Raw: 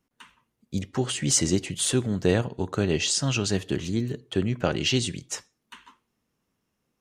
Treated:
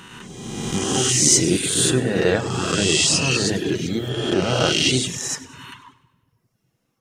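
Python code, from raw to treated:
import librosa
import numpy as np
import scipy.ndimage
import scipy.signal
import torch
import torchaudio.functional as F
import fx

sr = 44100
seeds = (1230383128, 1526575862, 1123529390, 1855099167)

y = fx.spec_swells(x, sr, rise_s=1.74)
y = fx.low_shelf(y, sr, hz=190.0, db=-5.0)
y = fx.echo_feedback(y, sr, ms=98, feedback_pct=53, wet_db=-10.0)
y = fx.room_shoebox(y, sr, seeds[0], volume_m3=1000.0, walls='mixed', distance_m=0.68)
y = fx.dereverb_blind(y, sr, rt60_s=0.87)
y = F.gain(torch.from_numpy(y), 3.5).numpy()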